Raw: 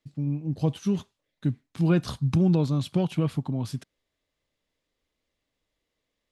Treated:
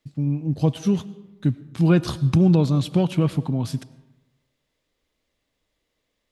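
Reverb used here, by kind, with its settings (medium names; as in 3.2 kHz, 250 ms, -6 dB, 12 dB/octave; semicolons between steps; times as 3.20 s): algorithmic reverb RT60 1.1 s, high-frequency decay 0.6×, pre-delay 60 ms, DRR 18 dB; trim +5 dB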